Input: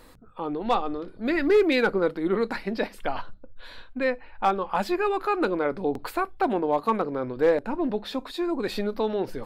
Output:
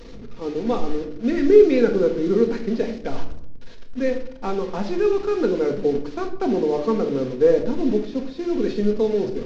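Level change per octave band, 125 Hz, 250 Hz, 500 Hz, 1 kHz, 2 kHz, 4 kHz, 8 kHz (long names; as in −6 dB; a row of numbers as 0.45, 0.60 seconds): +6.5 dB, +5.5 dB, +6.5 dB, −6.0 dB, −5.5 dB, −2.5 dB, can't be measured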